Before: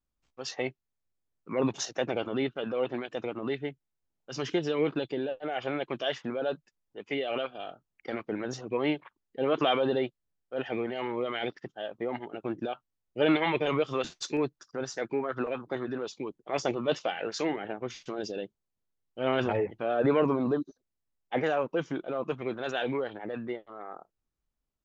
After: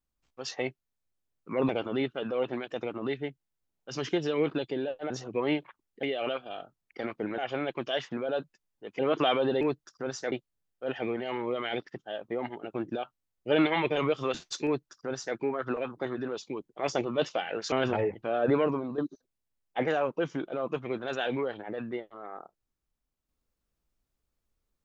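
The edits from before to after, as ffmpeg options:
ffmpeg -i in.wav -filter_complex "[0:a]asplit=10[link_01][link_02][link_03][link_04][link_05][link_06][link_07][link_08][link_09][link_10];[link_01]atrim=end=1.692[link_11];[link_02]atrim=start=2.098:end=5.512[link_12];[link_03]atrim=start=8.468:end=9.402[link_13];[link_04]atrim=start=7.118:end=8.472[link_14];[link_05]atrim=start=5.508:end=7.122[link_15];[link_06]atrim=start=9.398:end=10.022[link_16];[link_07]atrim=start=14.348:end=15.062[link_17];[link_08]atrim=start=10.018:end=17.422[link_18];[link_09]atrim=start=19.278:end=20.54,asetpts=PTS-STARTPTS,afade=type=out:start_time=0.792:duration=0.47:silence=0.281838[link_19];[link_10]atrim=start=20.54,asetpts=PTS-STARTPTS,afade=type=in:duration=0.004:curve=hsin:silence=0.281838[link_20];[link_11][link_12]acrossfade=duration=0.004:curve1=hsin:curve2=hsin[link_21];[link_21][link_13]acrossfade=duration=0.004:curve1=hsin:curve2=hsin[link_22];[link_22][link_14]acrossfade=duration=0.004:curve1=hsin:curve2=hsin[link_23];[link_23][link_15]acrossfade=duration=0.004:curve1=hsin:curve2=hsin[link_24];[link_24][link_16]acrossfade=duration=0.004:curve1=hsin:curve2=hsin[link_25];[link_25][link_17]acrossfade=duration=0.004:curve1=hsin:curve2=hsin[link_26];[link_26][link_18]acrossfade=duration=0.004:curve1=hsin:curve2=hsin[link_27];[link_19][link_20]concat=n=2:v=0:a=1[link_28];[link_27][link_28]acrossfade=duration=0.004:curve1=hsin:curve2=hsin" out.wav

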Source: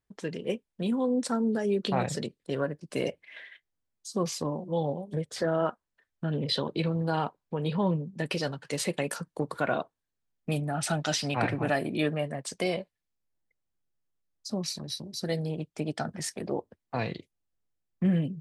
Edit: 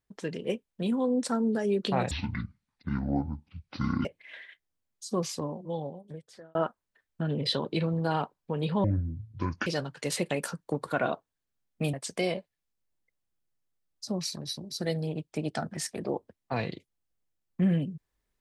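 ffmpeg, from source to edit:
ffmpeg -i in.wav -filter_complex "[0:a]asplit=7[link_01][link_02][link_03][link_04][link_05][link_06][link_07];[link_01]atrim=end=2.114[link_08];[link_02]atrim=start=2.11:end=3.08,asetpts=PTS-STARTPTS,asetrate=22050,aresample=44100[link_09];[link_03]atrim=start=3.076:end=5.58,asetpts=PTS-STARTPTS,afade=type=out:start_time=1.044:duration=1.46[link_10];[link_04]atrim=start=5.58:end=7.874,asetpts=PTS-STARTPTS,afade=type=in:duration=0.004:curve=hsin[link_11];[link_05]atrim=start=7.87:end=8.34,asetpts=PTS-STARTPTS,asetrate=25137,aresample=44100,atrim=end_sample=36363,asetpts=PTS-STARTPTS[link_12];[link_06]atrim=start=8.336:end=10.612[link_13];[link_07]atrim=start=12.358[link_14];[link_08][link_09]acrossfade=duration=0.004:curve1=hsin:curve2=hsin[link_15];[link_10][link_11]concat=n=2:v=0:a=1[link_16];[link_15][link_16]acrossfade=duration=0.004:curve1=hsin:curve2=hsin[link_17];[link_17][link_12]acrossfade=duration=0.004:curve1=hsin:curve2=hsin[link_18];[link_18][link_13]acrossfade=duration=0.004:curve1=hsin:curve2=hsin[link_19];[link_19][link_14]acrossfade=duration=0.004:curve1=hsin:curve2=hsin" out.wav

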